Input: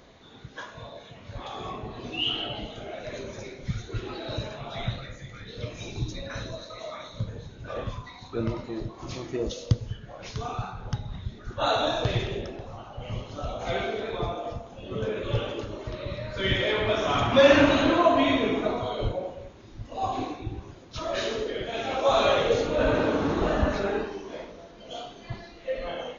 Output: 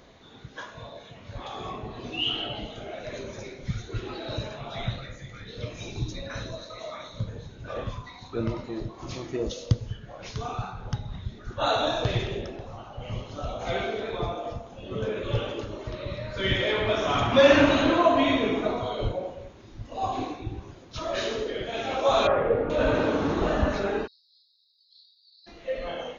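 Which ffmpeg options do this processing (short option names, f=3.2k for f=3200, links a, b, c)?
-filter_complex "[0:a]asettb=1/sr,asplit=3[a][b][c];[a]atrim=end=22.274[d];[b]atrim=start=22.27:end=22.7,asetpts=PTS-STARTPTS,afade=t=in:d=0.004:c=qsin,afade=t=out:st=0.426:d=0.004:c=qsin,lowpass=f=1.8k:w=0.5412,lowpass=f=1.8k:w=1.3066[e];[c]atrim=start=22.696[f];[d][e]acrossfade=d=0.004:c1=hsin:c2=qsin[g];[g][f]acrossfade=d=0.004:c1=qsin:c2=hsin,asplit=3[h][i][j];[h]afade=t=out:st=24.06:d=0.02[k];[i]asuperpass=centerf=4400:order=12:qfactor=3.2,afade=t=in:st=24.06:d=0.02,afade=t=out:st=25.46:d=0.02[l];[j]afade=t=in:st=25.46:d=0.02[m];[k][l][m]amix=inputs=3:normalize=0"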